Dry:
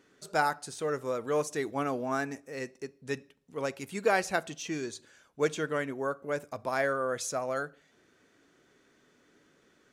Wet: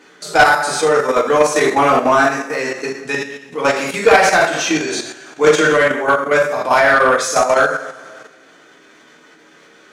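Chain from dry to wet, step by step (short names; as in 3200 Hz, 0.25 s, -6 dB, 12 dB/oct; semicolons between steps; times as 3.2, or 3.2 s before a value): two-slope reverb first 0.63 s, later 2 s, from -18 dB, DRR -6 dB; level quantiser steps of 9 dB; overdrive pedal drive 19 dB, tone 4000 Hz, clips at -7 dBFS; gain +7 dB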